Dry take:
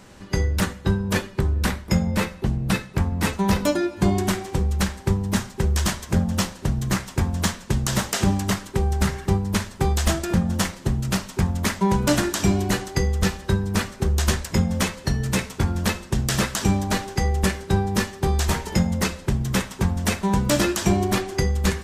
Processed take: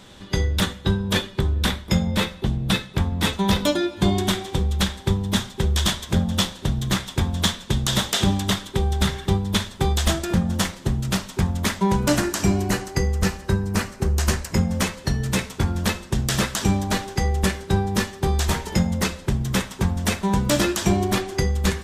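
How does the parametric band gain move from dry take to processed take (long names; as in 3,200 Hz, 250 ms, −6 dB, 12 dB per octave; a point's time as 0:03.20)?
parametric band 3,500 Hz 0.29 octaves
0:09.54 +14.5 dB
0:10.25 +5.5 dB
0:11.85 +5.5 dB
0:12.26 −5 dB
0:14.49 −5 dB
0:15.09 +3.5 dB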